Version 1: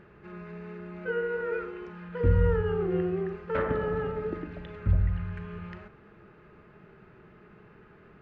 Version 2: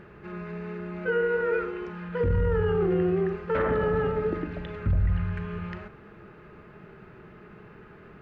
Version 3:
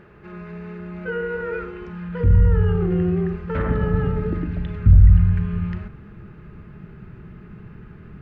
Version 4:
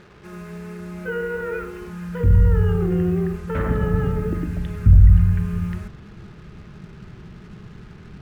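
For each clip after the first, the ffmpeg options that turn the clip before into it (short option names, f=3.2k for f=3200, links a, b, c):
-af "alimiter=limit=-23dB:level=0:latency=1:release=11,volume=5.5dB"
-af "asubboost=boost=5.5:cutoff=210"
-af "acrusher=bits=7:mix=0:aa=0.5"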